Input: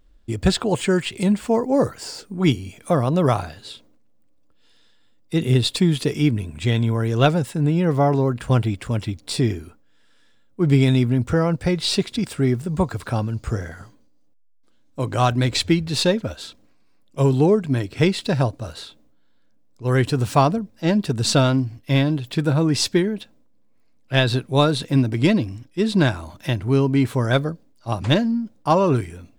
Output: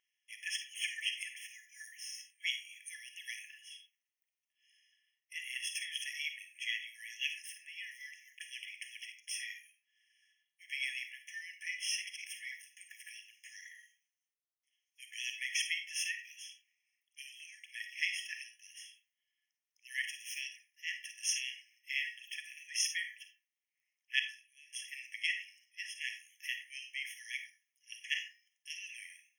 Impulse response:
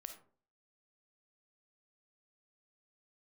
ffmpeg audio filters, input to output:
-filter_complex "[0:a]asettb=1/sr,asplit=3[a][b][c];[a]atrim=end=24.194[d];[b]atrim=start=24.19:end=24.73,asetpts=PTS-STARTPTS,afade=t=in:d=0.004:c=qsin,afade=t=out:st=0.536:d=0.004:c=qsin,acompressor=threshold=-30dB:ratio=12[e];[c]atrim=start=24.726[f];[d][e]acrossfade=d=0.004:c1=hsin:c2=qsin[g];[g][f]acrossfade=d=0.004:c1=qsin:c2=hsin[h];[1:a]atrim=start_sample=2205[i];[h][i]afir=irnorm=-1:irlink=0,afftfilt=real='re*eq(mod(floor(b*sr/1024/1700),2),1)':imag='im*eq(mod(floor(b*sr/1024/1700),2),1)':win_size=1024:overlap=0.75"

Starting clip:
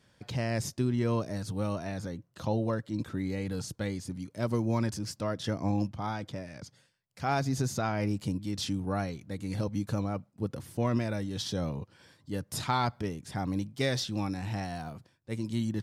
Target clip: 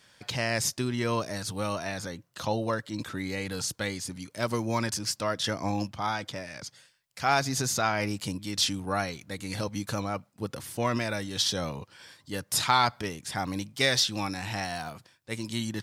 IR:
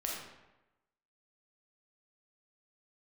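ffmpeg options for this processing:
-af "tiltshelf=f=650:g=-7,volume=3.5dB"

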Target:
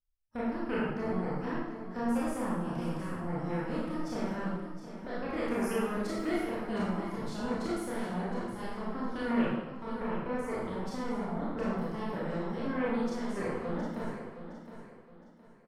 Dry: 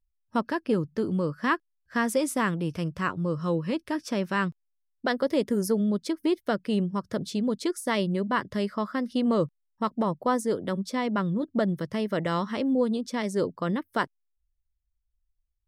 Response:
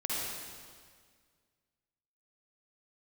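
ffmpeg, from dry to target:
-filter_complex "[0:a]asettb=1/sr,asplit=3[a][b][c];[a]atrim=end=5.374[d];[b]atrim=start=5.37:end=6.43,asetpts=PTS-STARTPTS,afade=t=in:d=0.004:c=qsin,afade=t=out:st=1.056:d=0.004:c=qsin,highshelf=f=4.5k:g=8.5[e];[c]atrim=start=6.426[f];[d][e]acrossfade=d=0.004:c1=hsin:c2=qsin[g];[g][f]acrossfade=d=0.004:c1=qsin:c2=hsin,acrossover=split=480[h][i];[h]aeval=exprs='0.126*(cos(1*acos(clip(val(0)/0.126,-1,1)))-cos(1*PI/2))+0.0501*(cos(6*acos(clip(val(0)/0.126,-1,1)))-cos(6*PI/2))+0.0562*(cos(8*acos(clip(val(0)/0.126,-1,1)))-cos(8*PI/2))':c=same[j];[i]acompressor=threshold=-37dB:ratio=6[k];[j][k]amix=inputs=2:normalize=0,aecho=1:1:715|1430|2145|2860:0.282|0.093|0.0307|0.0101[l];[1:a]atrim=start_sample=2205,asetrate=88200,aresample=44100[m];[l][m]afir=irnorm=-1:irlink=0,volume=-5.5dB"

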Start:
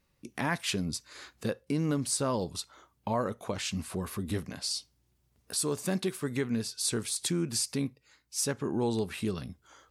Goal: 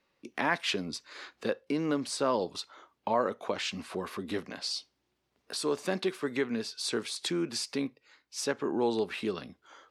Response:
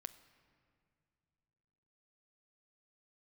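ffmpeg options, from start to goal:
-filter_complex "[0:a]acrossover=split=250 5100:gain=0.112 1 0.158[a][b][c];[a][b][c]amix=inputs=3:normalize=0,volume=3.5dB"

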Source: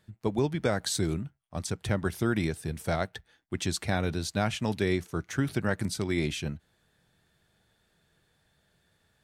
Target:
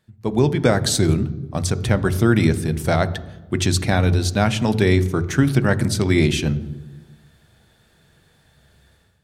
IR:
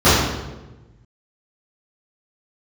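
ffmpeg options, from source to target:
-filter_complex "[0:a]dynaudnorm=f=120:g=5:m=12.5dB,asplit=2[a][b];[1:a]atrim=start_sample=2205,lowshelf=f=340:g=7.5[c];[b][c]afir=irnorm=-1:irlink=0,volume=-43dB[d];[a][d]amix=inputs=2:normalize=0,volume=-1dB"

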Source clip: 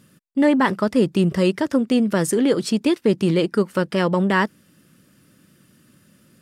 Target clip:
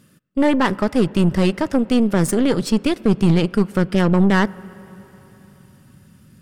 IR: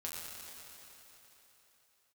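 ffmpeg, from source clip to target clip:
-filter_complex "[0:a]asubboost=boost=5.5:cutoff=160,aeval=exprs='0.531*(cos(1*acos(clip(val(0)/0.531,-1,1)))-cos(1*PI/2))+0.0531*(cos(6*acos(clip(val(0)/0.531,-1,1)))-cos(6*PI/2))':c=same,asplit=2[a][b];[1:a]atrim=start_sample=2205,lowpass=2.6k[c];[b][c]afir=irnorm=-1:irlink=0,volume=-17.5dB[d];[a][d]amix=inputs=2:normalize=0"

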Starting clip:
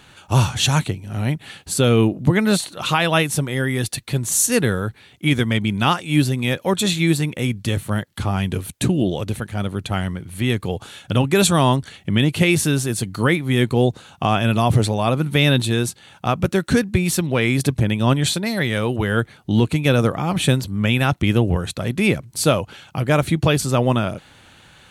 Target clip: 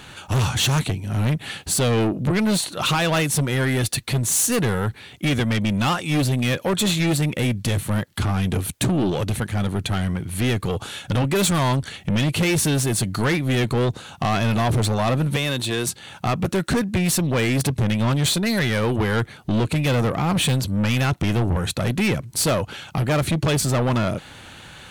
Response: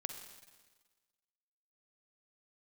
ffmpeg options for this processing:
-filter_complex "[0:a]asplit=2[a][b];[b]alimiter=limit=-14dB:level=0:latency=1:release=414,volume=1dB[c];[a][c]amix=inputs=2:normalize=0,asettb=1/sr,asplit=3[d][e][f];[d]atrim=end=15.364[g];[e]atrim=start=15.36:end=15.87,asetpts=PTS-STARTPTS,afade=t=in:d=0.004:c=qsin,afade=t=out:st=0.506:d=0.004:c=qsin,acrossover=split=340|7500[h][i][j];[h]acompressor=threshold=-27dB:ratio=4[k];[i]acompressor=threshold=-19dB:ratio=4[l];[j]acompressor=threshold=-35dB:ratio=4[m];[k][l][m]amix=inputs=3:normalize=0[n];[f]atrim=start=15.866[o];[g][n]acrossfade=d=0.004:c1=hsin:c2=qsin[p];[p][o]acrossfade=d=0.004:c1=qsin:c2=hsin,asoftclip=type=tanh:threshold=-16.5dB"

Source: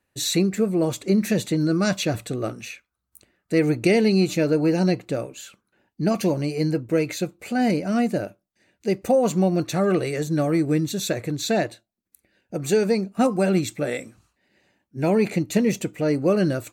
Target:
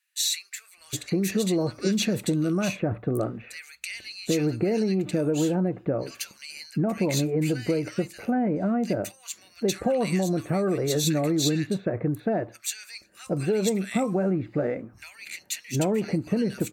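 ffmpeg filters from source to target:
-filter_complex "[0:a]asplit=2[a][b];[b]alimiter=limit=-18.5dB:level=0:latency=1,volume=1.5dB[c];[a][c]amix=inputs=2:normalize=0,acompressor=threshold=-18dB:ratio=6,acrossover=split=1700[d][e];[d]adelay=770[f];[f][e]amix=inputs=2:normalize=0,volume=-3dB"

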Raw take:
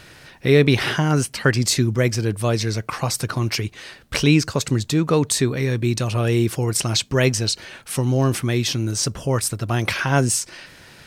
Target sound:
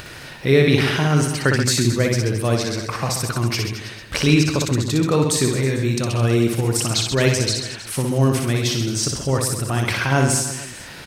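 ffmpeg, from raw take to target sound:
-af "acompressor=mode=upward:threshold=-29dB:ratio=2.5,aecho=1:1:60|132|218.4|322.1|446.5:0.631|0.398|0.251|0.158|0.1,volume=-1dB"

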